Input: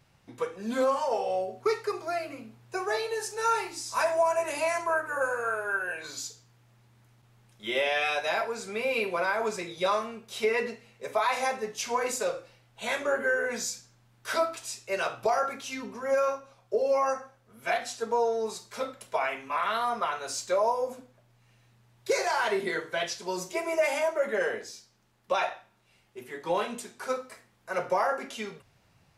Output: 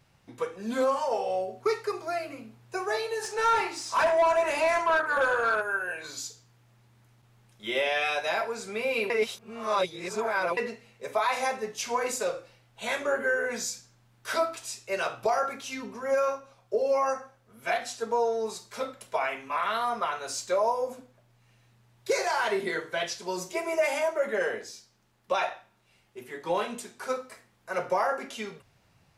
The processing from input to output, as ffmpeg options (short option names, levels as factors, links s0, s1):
-filter_complex "[0:a]asplit=3[s0][s1][s2];[s0]afade=t=out:st=3.22:d=0.02[s3];[s1]asplit=2[s4][s5];[s5]highpass=f=720:p=1,volume=6.31,asoftclip=type=tanh:threshold=0.168[s6];[s4][s6]amix=inputs=2:normalize=0,lowpass=f=2000:p=1,volume=0.501,afade=t=in:st=3.22:d=0.02,afade=t=out:st=5.61:d=0.02[s7];[s2]afade=t=in:st=5.61:d=0.02[s8];[s3][s7][s8]amix=inputs=3:normalize=0,asplit=3[s9][s10][s11];[s9]atrim=end=9.102[s12];[s10]atrim=start=9.098:end=10.572,asetpts=PTS-STARTPTS,areverse[s13];[s11]atrim=start=10.568[s14];[s12][s13]acrossfade=d=0.004:c1=hsin:c2=hsin[s15];[s15][s14]acrossfade=d=0.004:c1=hsin:c2=hsin"